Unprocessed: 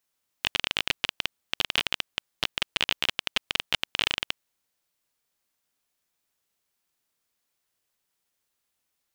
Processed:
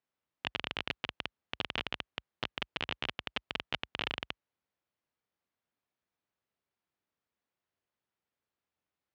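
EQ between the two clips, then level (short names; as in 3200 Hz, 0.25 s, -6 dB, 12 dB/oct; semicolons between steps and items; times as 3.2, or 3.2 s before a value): HPF 52 Hz 24 dB/oct; tape spacing loss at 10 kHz 29 dB; -2.0 dB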